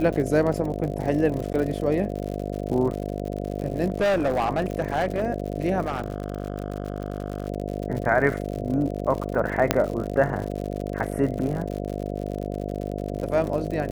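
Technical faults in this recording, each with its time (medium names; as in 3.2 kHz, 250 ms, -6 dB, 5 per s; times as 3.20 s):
buzz 50 Hz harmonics 14 -30 dBFS
crackle 83 per s -30 dBFS
1.53–1.54 s: dropout 9.9 ms
3.90–5.24 s: clipped -18.5 dBFS
5.82–7.48 s: clipped -22 dBFS
9.71 s: pop -2 dBFS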